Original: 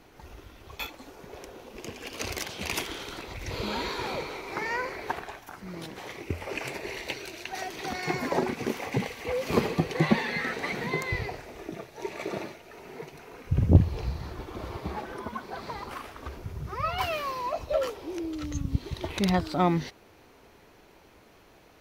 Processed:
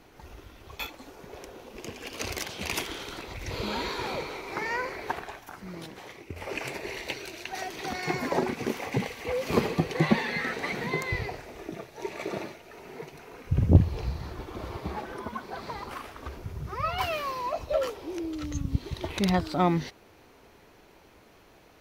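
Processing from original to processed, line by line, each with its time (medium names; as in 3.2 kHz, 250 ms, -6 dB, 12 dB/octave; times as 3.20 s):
5.62–6.36 s: fade out, to -9 dB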